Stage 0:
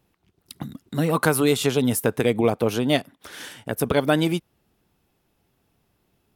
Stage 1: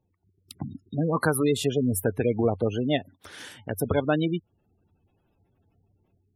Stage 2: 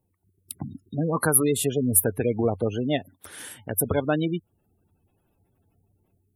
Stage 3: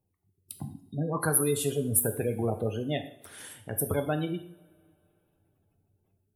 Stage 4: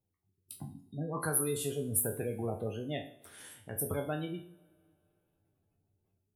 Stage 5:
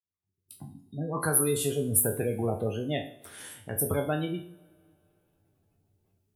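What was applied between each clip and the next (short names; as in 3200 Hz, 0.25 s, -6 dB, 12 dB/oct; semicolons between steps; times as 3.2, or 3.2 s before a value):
bell 93 Hz +13 dB 0.29 oct; AGC gain up to 7 dB; spectral gate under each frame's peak -20 dB strong; gain -7.5 dB
resonant high shelf 7500 Hz +10.5 dB, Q 1.5
two-slope reverb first 0.54 s, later 2.8 s, from -26 dB, DRR 6 dB; gain -6 dB
spectral trails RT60 0.30 s; gain -7 dB
opening faded in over 1.40 s; gain +6.5 dB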